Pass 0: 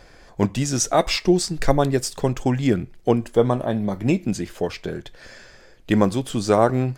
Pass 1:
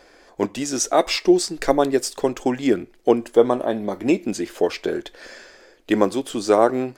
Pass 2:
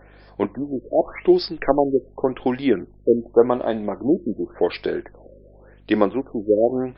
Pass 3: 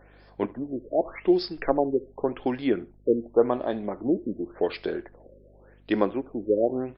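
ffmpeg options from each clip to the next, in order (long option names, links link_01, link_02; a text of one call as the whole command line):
ffmpeg -i in.wav -af "lowshelf=frequency=210:width_type=q:width=1.5:gain=-12.5,dynaudnorm=framelen=620:gausssize=3:maxgain=11.5dB,volume=-1dB" out.wav
ffmpeg -i in.wav -af "aeval=exprs='val(0)+0.00355*(sin(2*PI*50*n/s)+sin(2*PI*2*50*n/s)/2+sin(2*PI*3*50*n/s)/3+sin(2*PI*4*50*n/s)/4+sin(2*PI*5*50*n/s)/5)':channel_layout=same,afftfilt=real='re*lt(b*sr/1024,580*pow(5500/580,0.5+0.5*sin(2*PI*0.88*pts/sr)))':imag='im*lt(b*sr/1024,580*pow(5500/580,0.5+0.5*sin(2*PI*0.88*pts/sr)))':win_size=1024:overlap=0.75" out.wav
ffmpeg -i in.wav -af "aecho=1:1:72|144:0.0794|0.0199,volume=-5.5dB" out.wav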